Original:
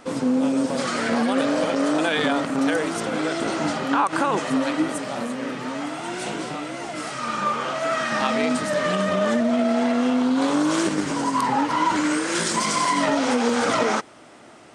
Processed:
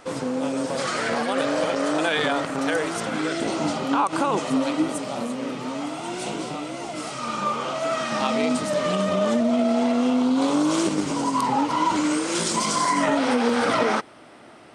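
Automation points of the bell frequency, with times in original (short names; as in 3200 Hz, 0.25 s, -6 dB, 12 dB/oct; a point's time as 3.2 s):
bell -9 dB 0.49 oct
2.93 s 240 Hz
3.54 s 1700 Hz
12.65 s 1700 Hz
13.25 s 6900 Hz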